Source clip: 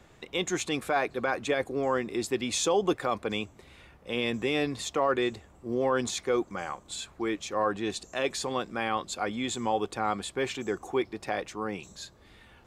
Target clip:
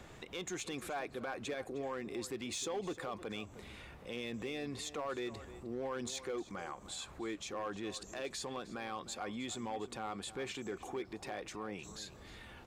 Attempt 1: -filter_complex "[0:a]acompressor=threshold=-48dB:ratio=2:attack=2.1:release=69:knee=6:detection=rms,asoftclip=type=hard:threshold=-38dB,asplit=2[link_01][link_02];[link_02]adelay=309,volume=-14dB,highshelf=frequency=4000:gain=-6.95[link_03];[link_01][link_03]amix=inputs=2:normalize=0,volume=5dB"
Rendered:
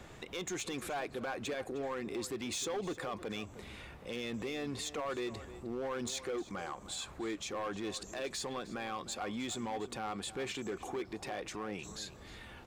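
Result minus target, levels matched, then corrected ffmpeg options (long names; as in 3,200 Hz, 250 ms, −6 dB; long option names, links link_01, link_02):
downward compressor: peak gain reduction −3 dB
-filter_complex "[0:a]acompressor=threshold=-54.5dB:ratio=2:attack=2.1:release=69:knee=6:detection=rms,asoftclip=type=hard:threshold=-38dB,asplit=2[link_01][link_02];[link_02]adelay=309,volume=-14dB,highshelf=frequency=4000:gain=-6.95[link_03];[link_01][link_03]amix=inputs=2:normalize=0,volume=5dB"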